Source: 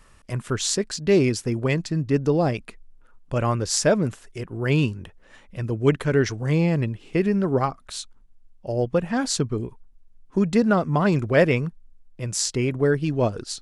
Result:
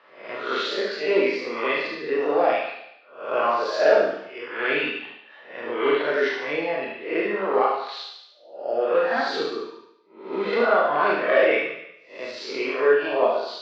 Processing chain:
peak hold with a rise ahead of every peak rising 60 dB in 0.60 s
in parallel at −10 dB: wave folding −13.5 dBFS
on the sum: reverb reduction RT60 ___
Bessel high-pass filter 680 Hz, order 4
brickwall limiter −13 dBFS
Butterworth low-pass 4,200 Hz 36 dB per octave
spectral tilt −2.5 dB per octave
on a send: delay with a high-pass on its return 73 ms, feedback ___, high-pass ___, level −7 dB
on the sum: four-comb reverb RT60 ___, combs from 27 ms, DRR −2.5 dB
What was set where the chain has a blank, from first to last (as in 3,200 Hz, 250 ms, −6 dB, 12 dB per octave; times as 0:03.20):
1.1 s, 52%, 1,400 Hz, 0.72 s